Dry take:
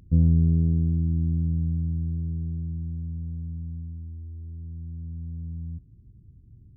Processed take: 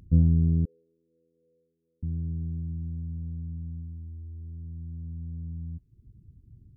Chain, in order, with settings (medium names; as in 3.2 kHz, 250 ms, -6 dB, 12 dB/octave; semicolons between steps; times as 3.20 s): reverb removal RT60 0.59 s; 0.65–2.03 s: Butterworth band-pass 480 Hz, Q 7.2